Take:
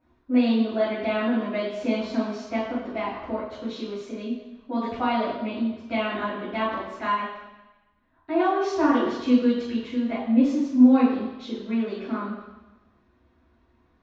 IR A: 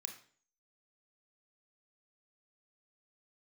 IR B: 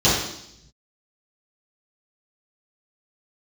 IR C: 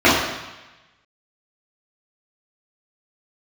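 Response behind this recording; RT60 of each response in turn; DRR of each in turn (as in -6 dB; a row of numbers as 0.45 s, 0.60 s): C; 0.45 s, 0.75 s, 1.1 s; 3.0 dB, -11.0 dB, -10.5 dB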